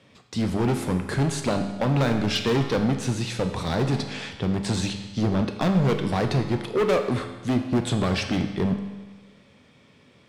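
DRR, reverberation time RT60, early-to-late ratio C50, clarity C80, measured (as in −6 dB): 5.0 dB, 1.3 s, 7.5 dB, 9.5 dB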